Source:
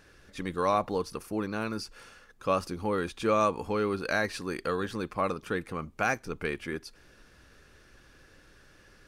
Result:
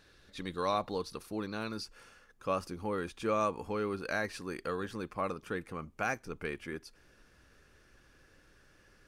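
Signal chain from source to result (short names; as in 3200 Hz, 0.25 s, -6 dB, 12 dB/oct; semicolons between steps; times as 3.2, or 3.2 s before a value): bell 3900 Hz +9.5 dB 0.43 oct, from 1.85 s -2.5 dB; gain -5.5 dB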